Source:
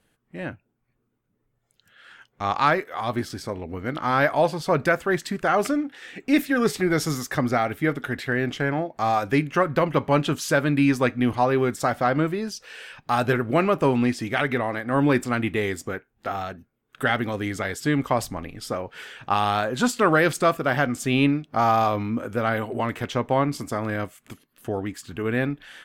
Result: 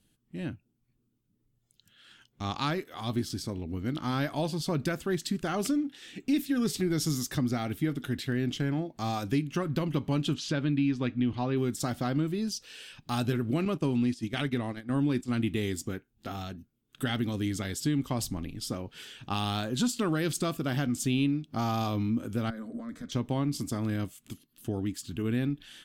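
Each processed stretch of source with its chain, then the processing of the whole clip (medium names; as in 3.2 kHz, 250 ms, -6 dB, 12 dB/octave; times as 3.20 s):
10.34–11.57 s: Chebyshev low-pass 3.1 kHz + tape noise reduction on one side only encoder only
13.65–15.43 s: low-pass 12 kHz + gate -29 dBFS, range -10 dB
22.50–23.12 s: compression 10:1, threshold -27 dBFS + distance through air 58 m + static phaser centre 560 Hz, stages 8
whole clip: high-order bell 1 kHz -12 dB 2.7 oct; compression 3:1, threshold -25 dBFS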